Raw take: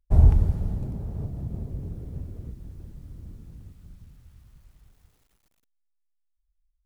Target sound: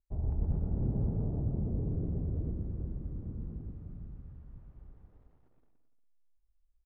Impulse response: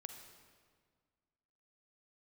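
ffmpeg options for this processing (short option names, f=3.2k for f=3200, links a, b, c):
-af "lowpass=1k,equalizer=f=320:w=0.81:g=4.5,areverse,acompressor=threshold=-29dB:ratio=20,areverse,aecho=1:1:120|216|292.8|354.2|403.4:0.631|0.398|0.251|0.158|0.1"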